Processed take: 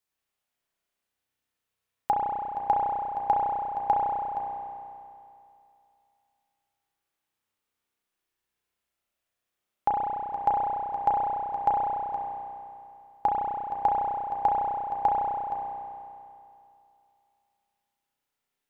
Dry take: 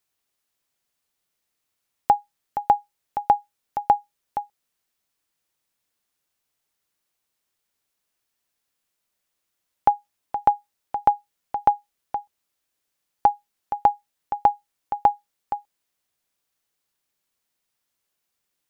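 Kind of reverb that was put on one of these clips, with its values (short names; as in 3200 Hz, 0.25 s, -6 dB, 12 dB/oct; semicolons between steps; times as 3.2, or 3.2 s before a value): spring tank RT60 2.6 s, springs 32 ms, chirp 75 ms, DRR -4.5 dB; gain -8 dB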